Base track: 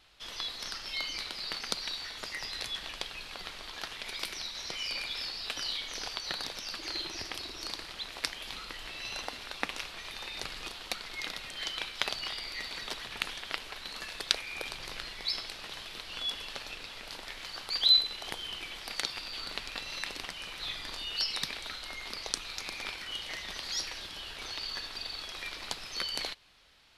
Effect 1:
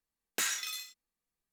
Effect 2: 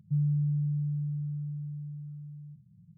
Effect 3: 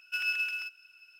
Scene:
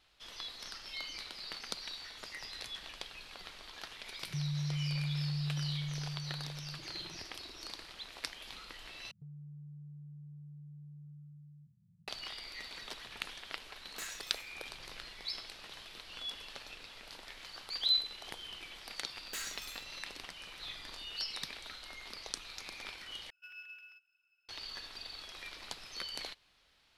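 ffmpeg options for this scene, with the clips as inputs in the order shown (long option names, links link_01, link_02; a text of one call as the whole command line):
ffmpeg -i bed.wav -i cue0.wav -i cue1.wav -i cue2.wav -filter_complex "[2:a]asplit=2[link_01][link_02];[1:a]asplit=2[link_03][link_04];[0:a]volume=-7dB[link_05];[link_01]alimiter=level_in=6.5dB:limit=-24dB:level=0:latency=1:release=71,volume=-6.5dB[link_06];[link_02]acompressor=threshold=-38dB:ratio=6:attack=3.2:release=140:knee=1:detection=peak[link_07];[link_04]asoftclip=type=hard:threshold=-28dB[link_08];[3:a]equalizer=frequency=8500:width=0.68:gain=-10.5[link_09];[link_05]asplit=3[link_10][link_11][link_12];[link_10]atrim=end=9.114[link_13];[link_07]atrim=end=2.97,asetpts=PTS-STARTPTS,volume=-10.5dB[link_14];[link_11]atrim=start=12.076:end=23.304[link_15];[link_09]atrim=end=1.19,asetpts=PTS-STARTPTS,volume=-17.5dB[link_16];[link_12]atrim=start=24.486[link_17];[link_06]atrim=end=2.97,asetpts=PTS-STARTPTS,volume=-1.5dB,afade=type=in:duration=0.004:curve=hsin,afade=type=out:start_time=2.966:duration=0.004:curve=hsin,adelay=4230[link_18];[link_03]atrim=end=1.52,asetpts=PTS-STARTPTS,volume=-12.5dB,afade=type=in:duration=0.004:curve=hsin,afade=type=out:start_time=1.516:duration=0.004:curve=hsin,adelay=13600[link_19];[link_08]atrim=end=1.52,asetpts=PTS-STARTPTS,volume=-8.5dB,afade=type=in:duration=0.004:curve=hsin,afade=type=out:start_time=1.516:duration=0.004:curve=hsin,adelay=18950[link_20];[link_13][link_14]acrossfade=duration=0.004:curve1=hsin:curve2=hsin[link_21];[link_21][link_15]acrossfade=duration=0.004:curve1=hsin:curve2=hsin[link_22];[link_22][link_16]acrossfade=duration=0.004:curve1=hsin:curve2=hsin[link_23];[link_23][link_17]acrossfade=duration=0.004:curve1=hsin:curve2=hsin[link_24];[link_24][link_18][link_19][link_20]amix=inputs=4:normalize=0" out.wav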